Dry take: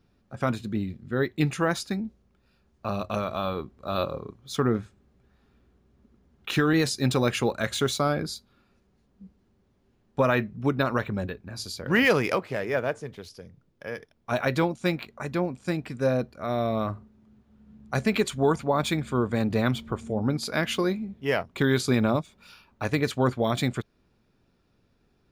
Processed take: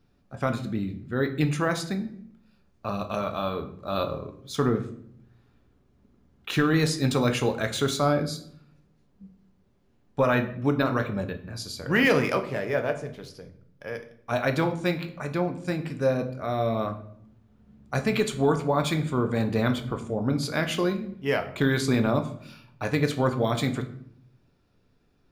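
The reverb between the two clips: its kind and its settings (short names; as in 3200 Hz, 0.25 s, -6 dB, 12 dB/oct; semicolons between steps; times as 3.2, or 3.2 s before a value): shoebox room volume 120 m³, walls mixed, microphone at 0.39 m; gain -1 dB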